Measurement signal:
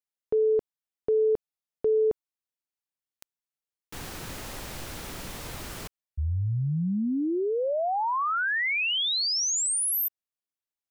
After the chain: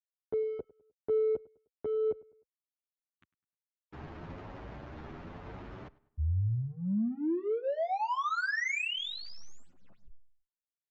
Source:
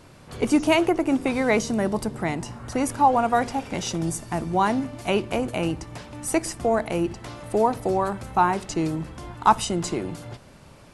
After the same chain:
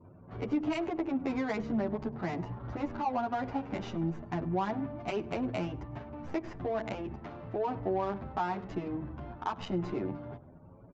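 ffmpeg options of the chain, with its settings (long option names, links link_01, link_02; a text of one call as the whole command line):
ffmpeg -i in.wav -filter_complex "[0:a]highpass=47,bandreject=frequency=500:width=12,acrossover=split=670|4900[link_01][link_02][link_03];[link_03]acrusher=bits=4:dc=4:mix=0:aa=0.000001[link_04];[link_01][link_02][link_04]amix=inputs=3:normalize=0,acompressor=threshold=-24dB:ratio=6:attack=1.9:release=177:knee=6:detection=peak,afftfilt=real='re*gte(hypot(re,im),0.00398)':imag='im*gte(hypot(re,im),0.00398)':win_size=1024:overlap=0.75,adynamicsmooth=sensitivity=3.5:basefreq=960,asplit=2[link_05][link_06];[link_06]adelay=102,lowpass=frequency=3600:poles=1,volume=-21dB,asplit=2[link_07][link_08];[link_08]adelay=102,lowpass=frequency=3600:poles=1,volume=0.4,asplit=2[link_09][link_10];[link_10]adelay=102,lowpass=frequency=3600:poles=1,volume=0.4[link_11];[link_05][link_07][link_09][link_11]amix=inputs=4:normalize=0,aresample=16000,aresample=44100,asplit=2[link_12][link_13];[link_13]adelay=9.4,afreqshift=0.95[link_14];[link_12][link_14]amix=inputs=2:normalize=1" out.wav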